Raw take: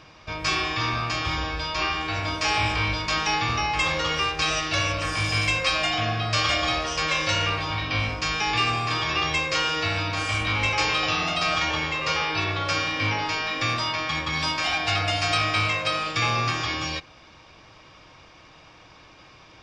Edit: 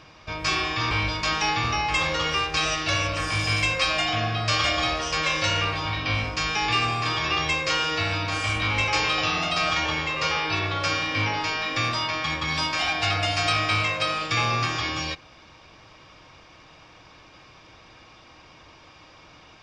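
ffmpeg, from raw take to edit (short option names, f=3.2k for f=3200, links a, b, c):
-filter_complex "[0:a]asplit=2[a][b];[a]atrim=end=0.912[c];[b]atrim=start=2.758[d];[c][d]acrossfade=d=0.004:c1=hsin:c2=hsin"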